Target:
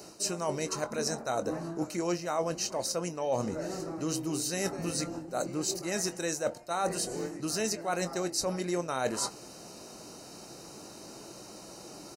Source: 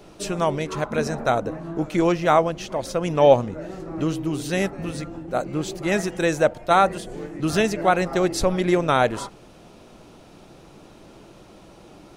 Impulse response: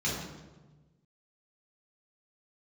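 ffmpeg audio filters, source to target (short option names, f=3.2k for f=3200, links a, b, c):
-filter_complex "[0:a]highpass=f=200:p=1,highshelf=f=3.9k:t=q:w=1.5:g=9.5,areverse,acompressor=threshold=-29dB:ratio=6,areverse,asuperstop=centerf=3400:order=20:qfactor=7,asplit=2[a][b];[b]adelay=23,volume=-12dB[c];[a][c]amix=inputs=2:normalize=0"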